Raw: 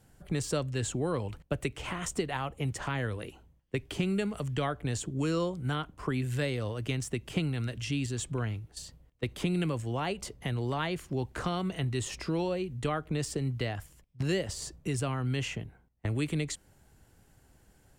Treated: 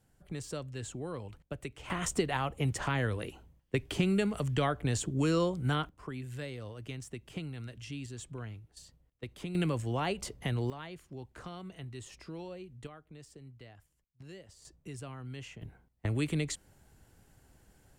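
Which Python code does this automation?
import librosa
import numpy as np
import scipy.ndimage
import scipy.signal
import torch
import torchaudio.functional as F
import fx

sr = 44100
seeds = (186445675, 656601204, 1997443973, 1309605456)

y = fx.gain(x, sr, db=fx.steps((0.0, -8.5), (1.9, 1.5), (5.89, -9.5), (9.55, 0.0), (10.7, -12.5), (12.87, -19.5), (14.65, -12.0), (15.62, -0.5)))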